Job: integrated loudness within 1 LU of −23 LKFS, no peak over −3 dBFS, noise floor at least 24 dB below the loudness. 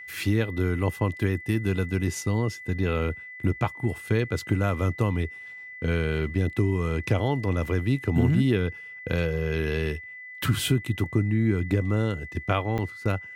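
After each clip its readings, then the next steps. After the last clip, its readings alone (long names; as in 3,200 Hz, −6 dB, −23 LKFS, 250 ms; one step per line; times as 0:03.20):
number of dropouts 1; longest dropout 5.1 ms; interfering tone 2,000 Hz; level of the tone −39 dBFS; integrated loudness −26.5 LKFS; sample peak −10.0 dBFS; target loudness −23.0 LKFS
→ repair the gap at 0:12.78, 5.1 ms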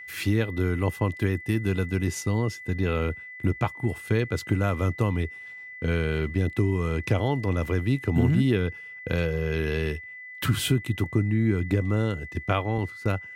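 number of dropouts 0; interfering tone 2,000 Hz; level of the tone −39 dBFS
→ notch filter 2,000 Hz, Q 30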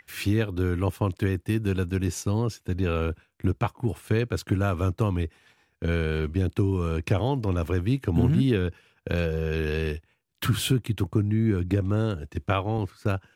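interfering tone none found; integrated loudness −26.5 LKFS; sample peak −10.0 dBFS; target loudness −23.0 LKFS
→ level +3.5 dB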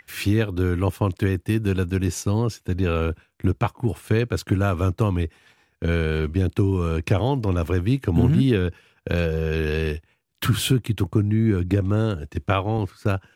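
integrated loudness −23.0 LKFS; sample peak −6.5 dBFS; background noise floor −66 dBFS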